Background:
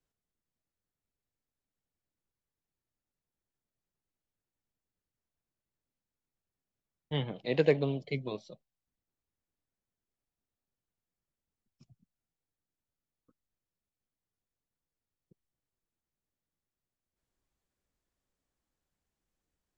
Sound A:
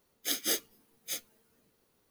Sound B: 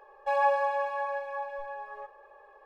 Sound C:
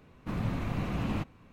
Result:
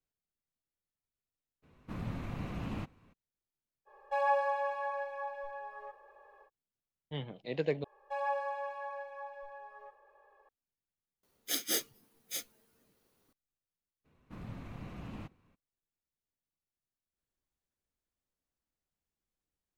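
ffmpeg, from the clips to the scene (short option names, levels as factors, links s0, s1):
-filter_complex "[3:a]asplit=2[s0][s1];[2:a]asplit=2[s2][s3];[0:a]volume=0.447,asplit=2[s4][s5];[s4]atrim=end=7.844[s6];[s3]atrim=end=2.65,asetpts=PTS-STARTPTS,volume=0.335[s7];[s5]atrim=start=10.486[s8];[s0]atrim=end=1.52,asetpts=PTS-STARTPTS,volume=0.447,afade=t=in:d=0.02,afade=t=out:st=1.5:d=0.02,adelay=1620[s9];[s2]atrim=end=2.65,asetpts=PTS-STARTPTS,volume=0.596,afade=t=in:d=0.05,afade=t=out:st=2.6:d=0.05,adelay=169785S[s10];[1:a]atrim=end=2.1,asetpts=PTS-STARTPTS,volume=0.794,afade=t=in:d=0.004:c=hsin,afade=t=out:st=2.096:d=0.004:c=hsin,adelay=11230[s11];[s1]atrim=end=1.52,asetpts=PTS-STARTPTS,volume=0.224,afade=t=in:d=0.02,afade=t=out:st=1.5:d=0.02,adelay=14040[s12];[s6][s7]acrossfade=d=0.004:c1=hsin:c2=hsin[s13];[s13][s8]acrossfade=d=0.004:c1=hsin:c2=hsin[s14];[s14][s9][s10][s11][s12]amix=inputs=5:normalize=0"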